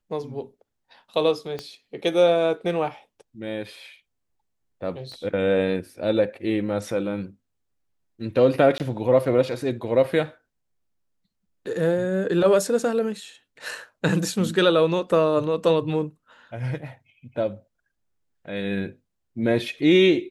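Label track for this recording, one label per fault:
1.590000	1.590000	pop -18 dBFS
5.120000	5.120000	pop -31 dBFS
8.780000	8.800000	gap 18 ms

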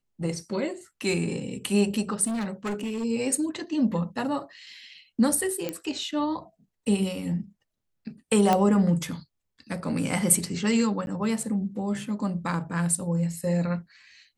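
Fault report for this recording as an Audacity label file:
2.270000	3.050000	clipped -26.5 dBFS
5.690000	5.690000	pop -15 dBFS
8.530000	8.530000	pop -9 dBFS
11.060000	11.070000	gap

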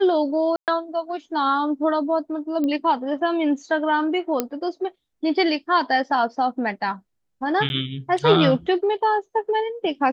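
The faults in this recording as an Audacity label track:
0.560000	0.680000	gap 0.118 s
2.640000	2.640000	pop -15 dBFS
4.400000	4.400000	pop -7 dBFS
7.690000	7.700000	gap 11 ms

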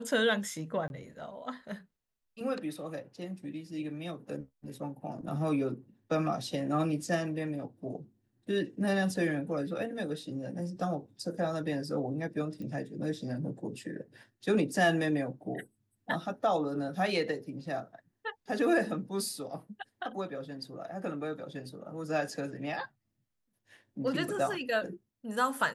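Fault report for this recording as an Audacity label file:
0.880000	0.900000	gap 21 ms
12.620000	12.620000	pop -32 dBFS

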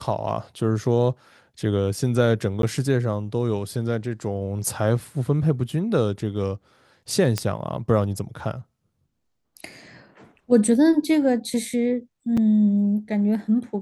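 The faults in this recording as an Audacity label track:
2.620000	2.630000	gap
7.380000	7.380000	pop -9 dBFS
12.370000	12.370000	gap 4.8 ms

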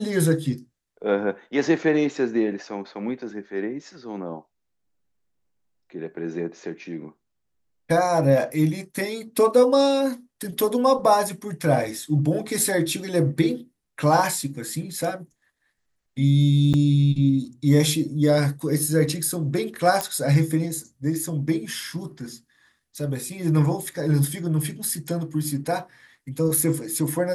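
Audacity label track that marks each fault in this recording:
16.730000	16.740000	gap 8.6 ms
20.010000	20.010000	pop -9 dBFS

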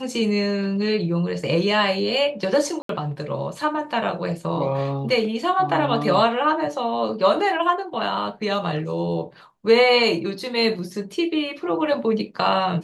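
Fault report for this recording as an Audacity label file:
2.820000	2.890000	gap 73 ms

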